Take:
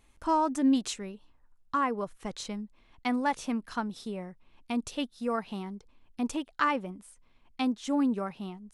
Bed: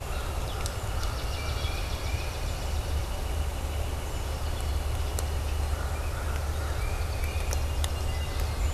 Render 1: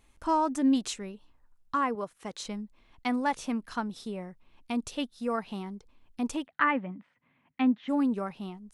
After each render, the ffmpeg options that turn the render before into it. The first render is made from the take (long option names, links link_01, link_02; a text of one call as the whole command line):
ffmpeg -i in.wav -filter_complex "[0:a]asettb=1/sr,asplit=3[link_01][link_02][link_03];[link_01]atrim=end=1.954[link_04];[link_02]atrim=start=1.95:end=2.45,asetpts=PTS-STARTPTS,afade=type=in:duration=0.004:curve=qsin,afade=type=out:start_time=0.496:duration=0.004:curve=qsin,highpass=frequency=220:poles=1[link_05];[link_03]atrim=start=2.446[link_06];[link_04][link_05]acrossfade=duration=0.004:curve1=hsin:curve2=qsin[link_07];[link_07][link_06]acrossfade=duration=0.004:curve1=qsin:curve2=hsin,asplit=3[link_08][link_09][link_10];[link_08]afade=type=out:start_time=6.45:duration=0.02[link_11];[link_09]highpass=frequency=110:width=0.5412,highpass=frequency=110:width=1.3066,equalizer=frequency=150:width_type=q:width=4:gain=7,equalizer=frequency=260:width_type=q:width=4:gain=5,equalizer=frequency=400:width_type=q:width=4:gain=-8,equalizer=frequency=1900:width_type=q:width=4:gain=8,lowpass=frequency=2900:width=0.5412,lowpass=frequency=2900:width=1.3066,afade=type=in:start_time=6.45:duration=0.02,afade=type=out:start_time=7.88:duration=0.02[link_12];[link_10]afade=type=in:start_time=7.88:duration=0.02[link_13];[link_11][link_12][link_13]amix=inputs=3:normalize=0" out.wav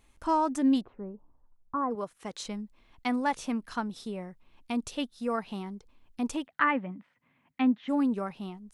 ffmpeg -i in.wav -filter_complex "[0:a]asplit=3[link_01][link_02][link_03];[link_01]afade=type=out:start_time=0.8:duration=0.02[link_04];[link_02]lowpass=frequency=1100:width=0.5412,lowpass=frequency=1100:width=1.3066,afade=type=in:start_time=0.8:duration=0.02,afade=type=out:start_time=1.9:duration=0.02[link_05];[link_03]afade=type=in:start_time=1.9:duration=0.02[link_06];[link_04][link_05][link_06]amix=inputs=3:normalize=0" out.wav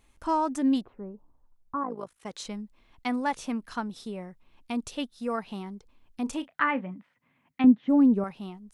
ffmpeg -i in.wav -filter_complex "[0:a]asettb=1/sr,asplit=3[link_01][link_02][link_03];[link_01]atrim=end=1.834[link_04];[link_02]atrim=start=1.83:end=2.26,asetpts=PTS-STARTPTS,afade=type=in:duration=0.004:curve=qsin,afade=type=out:start_time=0.426:duration=0.004:curve=qsin,tremolo=f=54:d=0.788[link_05];[link_03]atrim=start=2.256[link_06];[link_04][link_05]acrossfade=duration=0.004:curve1=hsin:curve2=qsin[link_07];[link_07][link_06]acrossfade=duration=0.004:curve1=qsin:curve2=hsin,asettb=1/sr,asplit=3[link_08][link_09][link_10];[link_08]atrim=end=6.234[link_11];[link_09]atrim=start=6.23:end=6.94,asetpts=PTS-STARTPTS,afade=type=in:duration=0.004:curve=qsin,afade=type=out:start_time=0.706:duration=0.004:curve=qsin,asplit=2[link_12][link_13];[link_13]adelay=32,volume=-13.5dB[link_14];[link_12][link_14]amix=inputs=2:normalize=0,atrim=end_sample=31311[link_15];[link_10]atrim=start=6.936[link_16];[link_11][link_15]acrossfade=duration=0.004:curve1=hsin:curve2=qsin[link_17];[link_17][link_16]acrossfade=duration=0.004:curve1=qsin:curve2=hsin,asettb=1/sr,asplit=3[link_18][link_19][link_20];[link_18]atrim=end=7.644[link_21];[link_19]atrim=start=7.64:end=8.24,asetpts=PTS-STARTPTS,afade=type=in:duration=0.004:curve=qsin,afade=type=out:start_time=0.596:duration=0.004:curve=qsin,tiltshelf=frequency=860:gain=9[link_22];[link_20]atrim=start=8.236[link_23];[link_21][link_22]acrossfade=duration=0.004:curve1=hsin:curve2=qsin[link_24];[link_24][link_23]acrossfade=duration=0.004:curve1=qsin:curve2=hsin" out.wav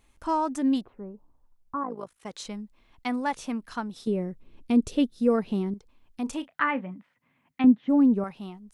ffmpeg -i in.wav -filter_complex "[0:a]asettb=1/sr,asplit=3[link_01][link_02][link_03];[link_01]atrim=end=4.074[link_04];[link_02]atrim=start=4.07:end=5.74,asetpts=PTS-STARTPTS,afade=type=in:duration=0.004:curve=qsin,afade=type=out:start_time=1.666:duration=0.004:curve=qsin,lowshelf=frequency=600:width_type=q:width=1.5:gain=9[link_05];[link_03]atrim=start=5.736[link_06];[link_04][link_05]acrossfade=duration=0.004:curve1=hsin:curve2=qsin[link_07];[link_07][link_06]acrossfade=duration=0.004:curve1=qsin:curve2=hsin" out.wav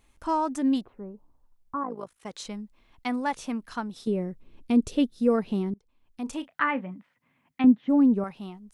ffmpeg -i in.wav -filter_complex "[0:a]asplit=2[link_01][link_02];[link_01]atrim=end=5.74,asetpts=PTS-STARTPTS,afade=type=out:start_time=5.736:duration=0.004:curve=hsin:silence=0.158489[link_03];[link_02]atrim=start=5.74,asetpts=PTS-STARTPTS,afade=type=in:duration=0.72:silence=0.158489[link_04];[link_03][link_04]concat=n=2:v=0:a=1" out.wav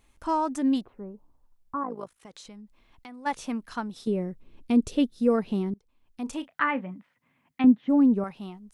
ffmpeg -i in.wav -filter_complex "[0:a]asplit=3[link_01][link_02][link_03];[link_01]afade=type=out:start_time=2.14:duration=0.02[link_04];[link_02]acompressor=threshold=-44dB:ratio=4:attack=3.2:release=140:knee=1:detection=peak,afade=type=in:start_time=2.14:duration=0.02,afade=type=out:start_time=3.25:duration=0.02[link_05];[link_03]afade=type=in:start_time=3.25:duration=0.02[link_06];[link_04][link_05][link_06]amix=inputs=3:normalize=0" out.wav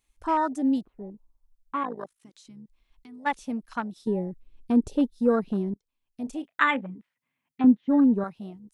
ffmpeg -i in.wav -af "afwtdn=0.0158,highshelf=frequency=2100:gain=11.5" out.wav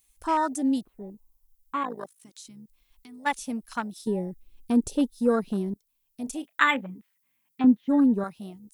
ffmpeg -i in.wav -af "aemphasis=mode=production:type=75fm" out.wav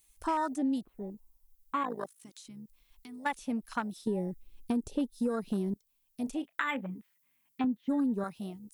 ffmpeg -i in.wav -filter_complex "[0:a]alimiter=limit=-16dB:level=0:latency=1:release=261,acrossover=split=3500|7400[link_01][link_02][link_03];[link_01]acompressor=threshold=-28dB:ratio=4[link_04];[link_02]acompressor=threshold=-59dB:ratio=4[link_05];[link_03]acompressor=threshold=-57dB:ratio=4[link_06];[link_04][link_05][link_06]amix=inputs=3:normalize=0" out.wav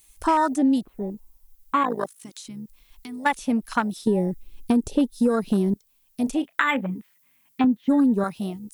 ffmpeg -i in.wav -af "volume=10.5dB" out.wav